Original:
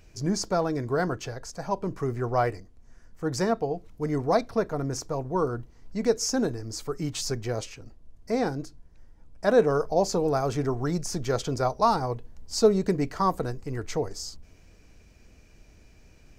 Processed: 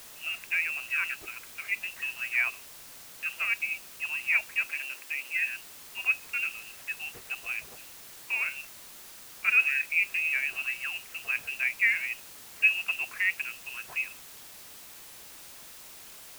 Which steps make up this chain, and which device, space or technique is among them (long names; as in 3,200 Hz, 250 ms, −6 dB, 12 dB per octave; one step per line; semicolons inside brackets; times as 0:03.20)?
scrambled radio voice (band-pass filter 330–2,700 Hz; voice inversion scrambler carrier 3,000 Hz; white noise bed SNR 15 dB)
0:04.67–0:05.34: high-pass filter 230 Hz 24 dB per octave
level −2.5 dB